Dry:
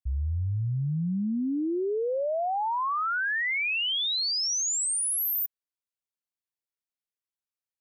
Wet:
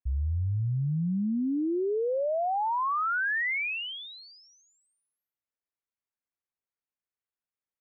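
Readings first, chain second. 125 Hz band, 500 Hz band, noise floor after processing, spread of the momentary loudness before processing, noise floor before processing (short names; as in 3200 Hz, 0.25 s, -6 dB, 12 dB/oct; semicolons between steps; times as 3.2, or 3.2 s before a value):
0.0 dB, 0.0 dB, under -85 dBFS, 5 LU, under -85 dBFS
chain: LPF 2400 Hz 24 dB/oct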